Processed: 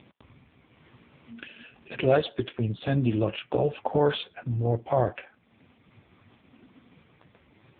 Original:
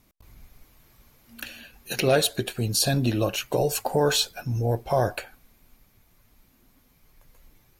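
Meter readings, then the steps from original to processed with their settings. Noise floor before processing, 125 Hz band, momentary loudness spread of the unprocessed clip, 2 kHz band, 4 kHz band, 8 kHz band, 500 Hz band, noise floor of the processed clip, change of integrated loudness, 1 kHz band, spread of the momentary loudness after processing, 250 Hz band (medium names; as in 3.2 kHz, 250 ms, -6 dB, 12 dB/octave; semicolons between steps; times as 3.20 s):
-62 dBFS, -1.5 dB, 17 LU, -5.0 dB, -10.5 dB, under -40 dB, -1.0 dB, -63 dBFS, -2.5 dB, -2.0 dB, 20 LU, -0.5 dB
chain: upward compressor, threshold -35 dBFS; AMR-NB 5.15 kbps 8 kHz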